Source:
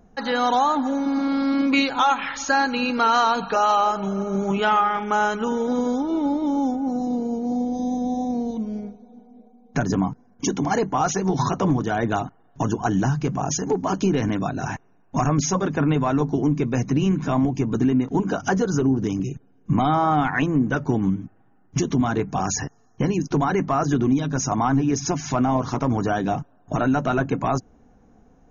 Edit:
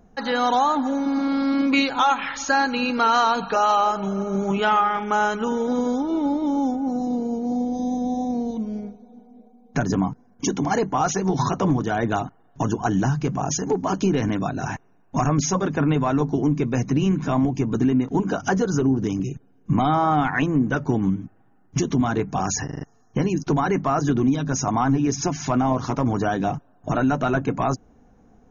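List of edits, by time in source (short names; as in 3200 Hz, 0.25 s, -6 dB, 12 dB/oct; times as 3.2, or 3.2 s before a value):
22.65 stutter 0.04 s, 5 plays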